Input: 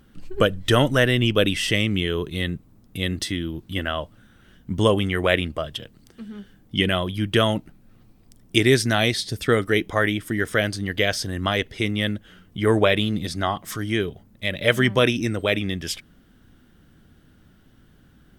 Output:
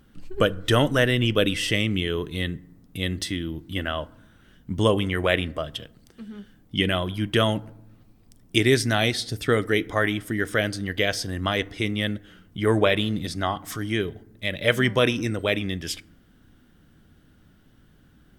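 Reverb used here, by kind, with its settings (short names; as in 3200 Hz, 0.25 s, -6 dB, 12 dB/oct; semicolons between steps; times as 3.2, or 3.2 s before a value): FDN reverb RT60 0.81 s, low-frequency decay 1.5×, high-frequency decay 0.45×, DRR 18.5 dB; gain -2 dB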